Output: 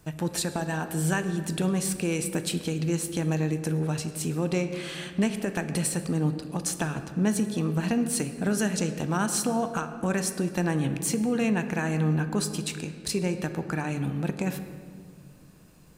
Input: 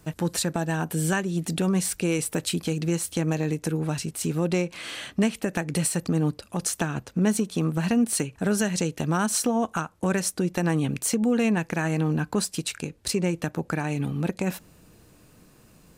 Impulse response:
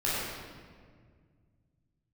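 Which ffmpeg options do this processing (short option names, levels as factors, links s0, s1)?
-filter_complex "[0:a]asplit=2[s0][s1];[1:a]atrim=start_sample=2205,asetrate=41454,aresample=44100[s2];[s1][s2]afir=irnorm=-1:irlink=0,volume=0.126[s3];[s0][s3]amix=inputs=2:normalize=0,volume=0.668"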